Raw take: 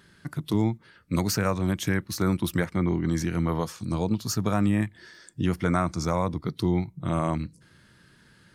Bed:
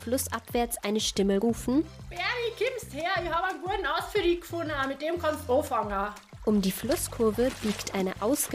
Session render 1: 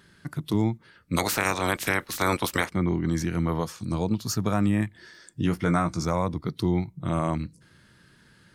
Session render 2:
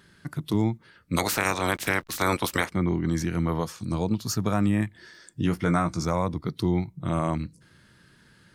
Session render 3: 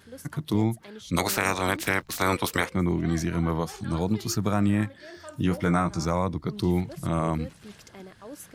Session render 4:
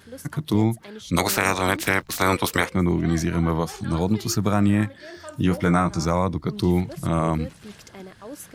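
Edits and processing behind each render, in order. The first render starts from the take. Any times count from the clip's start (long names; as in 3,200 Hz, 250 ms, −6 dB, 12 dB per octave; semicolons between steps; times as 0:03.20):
0:01.16–0:02.69: ceiling on every frequency bin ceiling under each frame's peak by 24 dB; 0:05.43–0:06.03: double-tracking delay 18 ms −7.5 dB
0:01.71–0:02.12: slack as between gear wheels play −38.5 dBFS
mix in bed −16 dB
level +4 dB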